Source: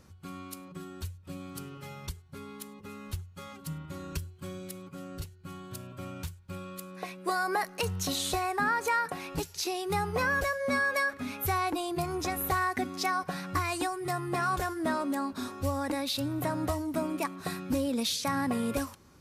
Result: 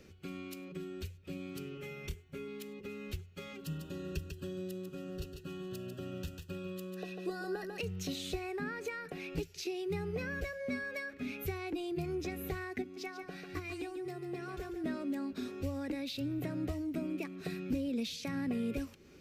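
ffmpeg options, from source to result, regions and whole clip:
ffmpeg -i in.wav -filter_complex "[0:a]asettb=1/sr,asplit=3[link_01][link_02][link_03];[link_01]atrim=end=1.774[link_04];[link_02]atrim=start=1.77:end=2.48,asetpts=PTS-STARTPTS,afade=type=in:duration=0.004:curve=qsin,afade=type=out:start_time=0.706:duration=0.004:curve=qsin,equalizer=frequency=4100:width_type=o:width=0.29:gain=-6,bandreject=frequency=5000:width=9.2,asplit=2[link_05][link_06];[link_06]adelay=26,volume=-9dB[link_07];[link_05][link_07]amix=inputs=2:normalize=0,atrim=end_sample=31311[link_08];[link_03]atrim=start=2.476[link_09];[link_04][link_08]acrossfade=duration=0.004:curve1=hsin:curve2=qsin[link_10];[link_10][link_09]acrossfade=duration=0.004:curve1=qsin:curve2=hsin,asettb=1/sr,asplit=3[link_11][link_12][link_13];[link_11]atrim=end=3.644[link_14];[link_12]atrim=start=3.64:end=7.78,asetpts=PTS-STARTPTS,afade=type=in:duration=0.004:curve=qsin,afade=type=out:start_time=4.136:duration=0.004:curve=qsin,asuperstop=centerf=2200:order=20:qfactor=4.5,aecho=1:1:146:0.398,atrim=end_sample=182574[link_15];[link_13]atrim=start=7.776[link_16];[link_14][link_15]acrossfade=duration=0.004:curve1=hsin:curve2=qsin[link_17];[link_17][link_16]acrossfade=duration=0.004:curve1=qsin:curve2=hsin,asettb=1/sr,asplit=3[link_18][link_19][link_20];[link_18]atrim=end=12.824[link_21];[link_19]atrim=start=12.82:end=14.84,asetpts=PTS-STARTPTS,afade=type=in:duration=0.004:curve=qsin,afade=type=out:start_time=2.016:duration=0.004:curve=qsin,agate=range=-7dB:threshold=-28dB:ratio=16:release=100:detection=peak,aecho=1:1:2.6:0.31,atrim=end_sample=89082,aecho=1:1:143:0.355,atrim=end_sample=89082[link_22];[link_20]atrim=start=14.836[link_23];[link_21][link_22]acrossfade=duration=0.004:curve1=hsin:curve2=qsin[link_24];[link_24][link_23]acrossfade=duration=0.004:curve1=qsin:curve2=hsin,equalizer=frequency=100:width_type=o:width=0.67:gain=-8,equalizer=frequency=400:width_type=o:width=0.67:gain=9,equalizer=frequency=1000:width_type=o:width=0.67:gain=-12,equalizer=frequency=2500:width_type=o:width=0.67:gain=8,equalizer=frequency=10000:width_type=o:width=0.67:gain=-9,acrossover=split=220[link_25][link_26];[link_26]acompressor=threshold=-45dB:ratio=2.5[link_27];[link_25][link_27]amix=inputs=2:normalize=0" out.wav

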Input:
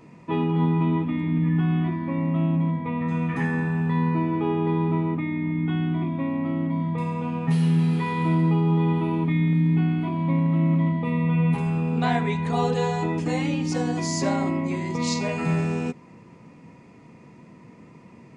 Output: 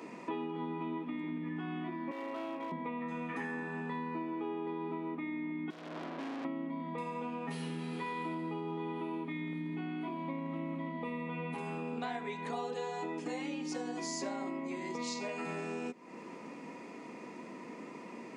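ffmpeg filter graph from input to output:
ffmpeg -i in.wav -filter_complex "[0:a]asettb=1/sr,asplit=3[link_01][link_02][link_03];[link_01]atrim=end=2.114[link_04];[link_02]atrim=start=2.11:end=2.72,asetpts=PTS-STARTPTS,afade=type=in:duration=0.004:curve=qsin,afade=type=out:start_time=0.606:duration=0.004:curve=qsin,highpass=frequency=350:width=0.5412,highpass=frequency=350:width=1.3066,asoftclip=type=hard:threshold=-31dB[link_05];[link_03]atrim=start=2.716[link_06];[link_04][link_05]acrossfade=duration=0.004:curve1=hsin:curve2=qsin[link_07];[link_07][link_06]acrossfade=duration=0.004:curve1=qsin:curve2=hsin,asettb=1/sr,asplit=3[link_08][link_09][link_10];[link_08]atrim=end=5.704[link_11];[link_09]atrim=start=5.7:end=6.45,asetpts=PTS-STARTPTS,afade=type=in:duration=0.004:curve=qsin,afade=type=out:start_time=0.746:duration=0.004:curve=qsin,highpass=42,aeval=exprs='(tanh(79.4*val(0)+0.6)-tanh(0.6))/79.4':channel_layout=same[link_12];[link_10]atrim=start=6.446[link_13];[link_11][link_12]acrossfade=duration=0.004:curve1=hsin:curve2=qsin[link_14];[link_14][link_13]acrossfade=duration=0.004:curve1=qsin:curve2=hsin,highpass=frequency=250:width=0.5412,highpass=frequency=250:width=1.3066,acompressor=threshold=-43dB:ratio=5,volume=5dB" out.wav

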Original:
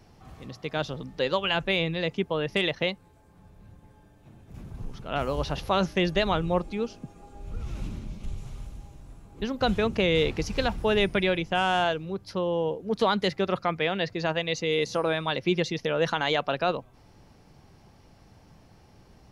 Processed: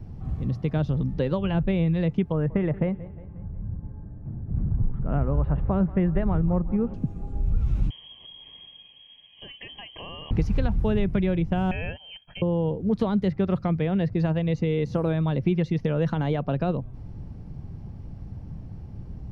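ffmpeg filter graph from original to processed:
ffmpeg -i in.wav -filter_complex "[0:a]asettb=1/sr,asplit=3[link_01][link_02][link_03];[link_01]atrim=end=2.324[link_04];[link_02]atrim=start=2.32:end=6.94,asetpts=PTS-STARTPTS,afade=type=in:duration=0.004:curve=qsin,afade=type=out:start_time=4.616:duration=0.004:curve=qsin,lowpass=frequency=1800:width=0.5412,lowpass=frequency=1800:width=1.3066,aecho=1:1:179|358|537|716:0.0891|0.0437|0.0214|0.0105,atrim=end_sample=203742[link_05];[link_03]atrim=start=6.936[link_06];[link_04][link_05]acrossfade=duration=0.004:curve1=hsin:curve2=qsin[link_07];[link_07][link_06]acrossfade=duration=0.004:curve1=qsin:curve2=hsin,asettb=1/sr,asplit=3[link_08][link_09][link_10];[link_08]atrim=end=7.904[link_11];[link_09]atrim=start=7.9:end=10.31,asetpts=PTS-STARTPTS,afade=type=in:duration=0.004:curve=qsin,afade=type=out:start_time=2.406:duration=0.004:curve=qsin,acompressor=threshold=-32dB:ratio=3:attack=3.2:release=140:knee=1:detection=peak,asuperstop=centerf=1900:order=20:qfactor=5.3,lowpass=frequency=2800:width_type=q:width=0.5098,lowpass=frequency=2800:width_type=q:width=0.6013,lowpass=frequency=2800:width_type=q:width=0.9,lowpass=frequency=2800:width_type=q:width=2.563,afreqshift=-3300[link_12];[link_10]atrim=start=10.306[link_13];[link_11][link_12]acrossfade=duration=0.004:curve1=hsin:curve2=qsin[link_14];[link_14][link_13]acrossfade=duration=0.004:curve1=qsin:curve2=hsin,asettb=1/sr,asplit=3[link_15][link_16][link_17];[link_15]atrim=end=11.714[link_18];[link_16]atrim=start=11.71:end=12.42,asetpts=PTS-STARTPTS,afade=type=in:duration=0.004:curve=qsin,afade=type=out:start_time=0.706:duration=0.004:curve=qsin,agate=range=-33dB:threshold=-44dB:ratio=3:release=100:detection=peak,aecho=1:1:1.2:0.67,atrim=end_sample=31311,lowpass=frequency=2800:width_type=q:width=0.5098,lowpass=frequency=2800:width_type=q:width=0.6013,lowpass=frequency=2800:width_type=q:width=0.9,lowpass=frequency=2800:width_type=q:width=2.563,afreqshift=-3300[link_19];[link_17]atrim=start=12.416[link_20];[link_18][link_19]acrossfade=duration=0.004:curve1=hsin:curve2=qsin[link_21];[link_21][link_20]acrossfade=duration=0.004:curve1=qsin:curve2=hsin,bass=frequency=250:gain=14,treble=frequency=4000:gain=-5,acrossover=split=740|2600[link_22][link_23][link_24];[link_22]acompressor=threshold=-26dB:ratio=4[link_25];[link_23]acompressor=threshold=-36dB:ratio=4[link_26];[link_24]acompressor=threshold=-45dB:ratio=4[link_27];[link_25][link_26][link_27]amix=inputs=3:normalize=0,tiltshelf=frequency=860:gain=5.5" out.wav

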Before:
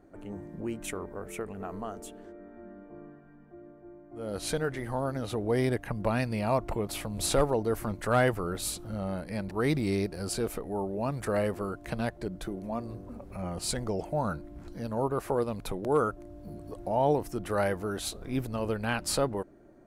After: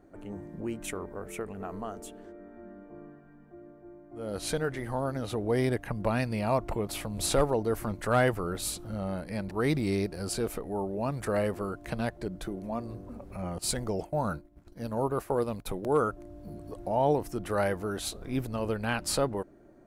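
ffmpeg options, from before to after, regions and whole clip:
ffmpeg -i in.wav -filter_complex "[0:a]asettb=1/sr,asplit=3[link_01][link_02][link_03];[link_01]atrim=end=13.584[link_04];[link_02]atrim=start=13.58:end=15.91,asetpts=PTS-STARTPTS,afade=type=in:duration=0.004:curve=qsin,afade=type=out:start_time=2.326:duration=0.004:curve=qsin,highshelf=frequency=12000:gain=8,agate=range=-33dB:threshold=-36dB:ratio=3:release=100:detection=peak[link_05];[link_03]atrim=start=15.906[link_06];[link_04][link_05]acrossfade=duration=0.004:curve1=hsin:curve2=qsin[link_07];[link_07][link_06]acrossfade=duration=0.004:curve1=qsin:curve2=hsin" out.wav

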